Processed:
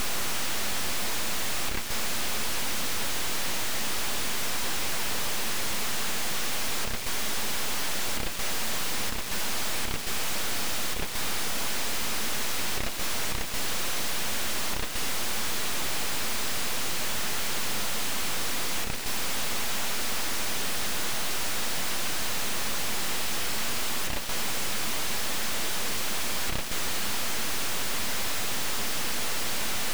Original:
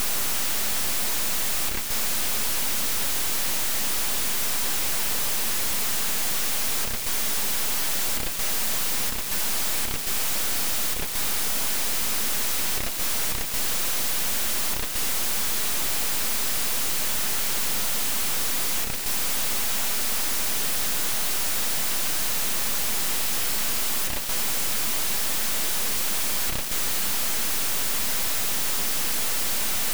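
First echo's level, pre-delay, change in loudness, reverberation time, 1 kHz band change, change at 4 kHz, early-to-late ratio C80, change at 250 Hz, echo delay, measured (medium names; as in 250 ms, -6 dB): no echo, no reverb, -5.5 dB, no reverb, 0.0 dB, -2.0 dB, no reverb, 0.0 dB, no echo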